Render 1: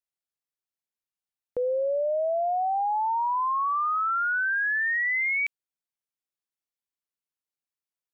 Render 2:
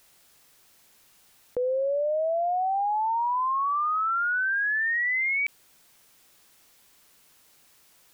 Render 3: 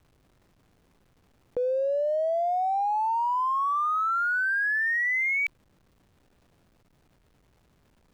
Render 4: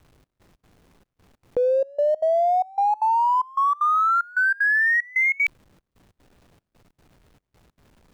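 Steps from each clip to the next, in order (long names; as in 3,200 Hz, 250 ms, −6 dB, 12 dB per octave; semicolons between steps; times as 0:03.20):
envelope flattener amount 50%
slack as between gear wheels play −47.5 dBFS
gate pattern "xxx..xx.xx" 189 BPM −24 dB; level +6.5 dB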